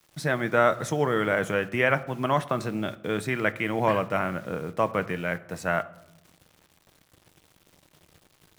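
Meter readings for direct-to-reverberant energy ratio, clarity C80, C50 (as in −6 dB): 11.0 dB, 20.5 dB, 18.0 dB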